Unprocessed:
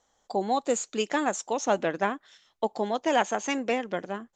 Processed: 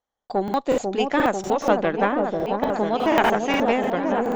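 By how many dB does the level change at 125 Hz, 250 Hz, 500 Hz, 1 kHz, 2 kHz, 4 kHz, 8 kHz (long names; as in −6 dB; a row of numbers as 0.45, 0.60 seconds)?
+9.5, +8.0, +7.0, +6.5, +6.0, +4.0, −5.5 decibels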